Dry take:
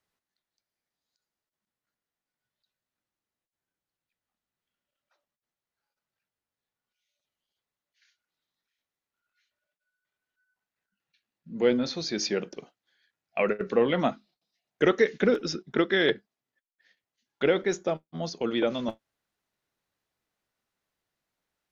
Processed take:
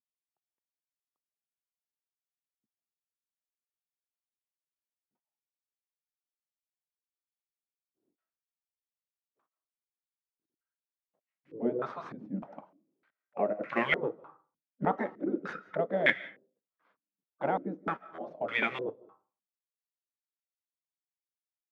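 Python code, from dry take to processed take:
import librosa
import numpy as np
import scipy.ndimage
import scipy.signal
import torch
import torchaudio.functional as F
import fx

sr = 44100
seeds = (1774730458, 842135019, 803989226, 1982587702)

y = fx.cvsd(x, sr, bps=64000)
y = scipy.signal.sosfilt(scipy.signal.butter(2, 190.0, 'highpass', fs=sr, output='sos'), y)
y = fx.spec_gate(y, sr, threshold_db=-10, keep='weak')
y = fx.rev_freeverb(y, sr, rt60_s=0.42, hf_ratio=0.55, predelay_ms=115, drr_db=19.5)
y = fx.filter_held_lowpass(y, sr, hz=3.3, low_hz=240.0, high_hz=2200.0)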